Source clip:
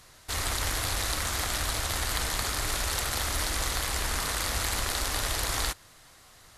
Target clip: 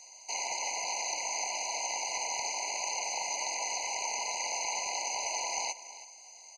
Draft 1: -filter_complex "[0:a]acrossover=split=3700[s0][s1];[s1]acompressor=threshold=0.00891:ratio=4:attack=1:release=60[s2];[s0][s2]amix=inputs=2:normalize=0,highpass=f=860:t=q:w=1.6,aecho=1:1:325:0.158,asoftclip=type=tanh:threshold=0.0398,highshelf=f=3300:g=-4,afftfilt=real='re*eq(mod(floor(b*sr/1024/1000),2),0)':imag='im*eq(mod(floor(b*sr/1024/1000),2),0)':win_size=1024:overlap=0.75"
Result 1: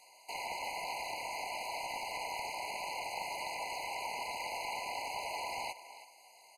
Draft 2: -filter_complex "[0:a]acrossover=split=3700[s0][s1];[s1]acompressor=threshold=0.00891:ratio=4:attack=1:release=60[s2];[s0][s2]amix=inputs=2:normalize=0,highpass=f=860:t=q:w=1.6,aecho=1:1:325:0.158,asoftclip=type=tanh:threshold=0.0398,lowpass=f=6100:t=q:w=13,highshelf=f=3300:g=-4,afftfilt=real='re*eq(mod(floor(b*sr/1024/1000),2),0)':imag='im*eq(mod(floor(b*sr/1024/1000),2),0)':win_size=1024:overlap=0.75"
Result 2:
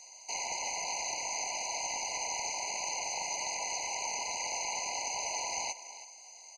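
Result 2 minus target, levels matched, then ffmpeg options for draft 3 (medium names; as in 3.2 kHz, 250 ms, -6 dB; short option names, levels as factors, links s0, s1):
saturation: distortion +10 dB
-filter_complex "[0:a]acrossover=split=3700[s0][s1];[s1]acompressor=threshold=0.00891:ratio=4:attack=1:release=60[s2];[s0][s2]amix=inputs=2:normalize=0,highpass=f=860:t=q:w=1.6,aecho=1:1:325:0.158,asoftclip=type=tanh:threshold=0.1,lowpass=f=6100:t=q:w=13,highshelf=f=3300:g=-4,afftfilt=real='re*eq(mod(floor(b*sr/1024/1000),2),0)':imag='im*eq(mod(floor(b*sr/1024/1000),2),0)':win_size=1024:overlap=0.75"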